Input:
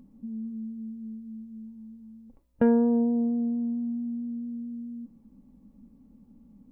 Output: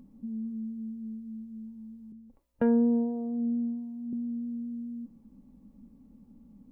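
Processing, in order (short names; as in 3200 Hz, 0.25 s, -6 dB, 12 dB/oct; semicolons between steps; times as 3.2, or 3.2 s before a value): 2.12–4.13 harmonic tremolo 1.4 Hz, depth 70%, crossover 450 Hz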